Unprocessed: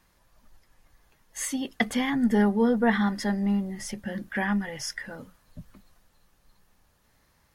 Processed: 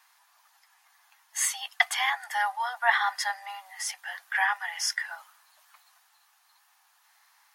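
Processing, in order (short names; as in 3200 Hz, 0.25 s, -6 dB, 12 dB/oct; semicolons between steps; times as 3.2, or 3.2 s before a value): steep high-pass 730 Hz 72 dB/oct; gain +5.5 dB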